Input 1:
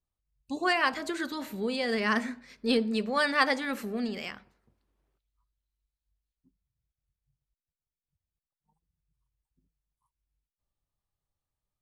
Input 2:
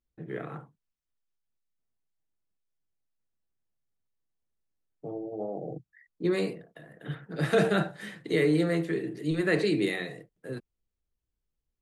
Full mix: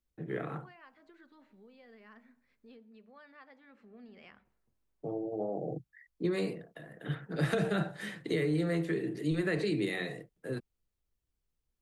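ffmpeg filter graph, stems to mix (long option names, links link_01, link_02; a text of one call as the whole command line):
ffmpeg -i stem1.wav -i stem2.wav -filter_complex "[0:a]lowpass=2600,acompressor=threshold=-39dB:ratio=2,volume=-12dB,afade=type=in:start_time=3.73:duration=0.55:silence=0.375837[link_01];[1:a]volume=0.5dB,asplit=3[link_02][link_03][link_04];[link_02]atrim=end=2.76,asetpts=PTS-STARTPTS,afade=type=out:start_time=2.756:duration=0.004:curve=hsin[link_05];[link_03]atrim=start=2.76:end=4.45,asetpts=PTS-STARTPTS,volume=0[link_06];[link_04]atrim=start=4.45,asetpts=PTS-STARTPTS,afade=type=in:duration=0.004:curve=hsin[link_07];[link_05][link_06][link_07]concat=n=3:v=0:a=1[link_08];[link_01][link_08]amix=inputs=2:normalize=0,acrossover=split=150[link_09][link_10];[link_10]acompressor=threshold=-29dB:ratio=6[link_11];[link_09][link_11]amix=inputs=2:normalize=0" out.wav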